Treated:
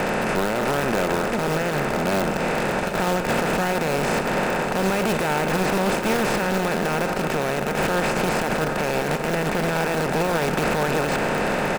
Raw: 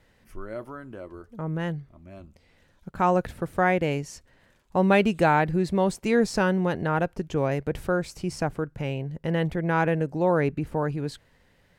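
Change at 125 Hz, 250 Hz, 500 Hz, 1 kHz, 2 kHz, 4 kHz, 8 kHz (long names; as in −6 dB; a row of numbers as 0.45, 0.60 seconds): +1.0, +2.5, +4.0, +4.5, +7.5, +11.0, +12.5 decibels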